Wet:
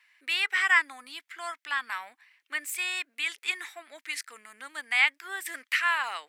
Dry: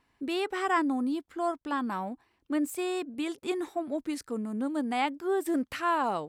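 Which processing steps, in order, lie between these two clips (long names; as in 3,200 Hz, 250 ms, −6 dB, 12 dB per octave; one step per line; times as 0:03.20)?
high-pass with resonance 2,000 Hz, resonance Q 3.1
level +5.5 dB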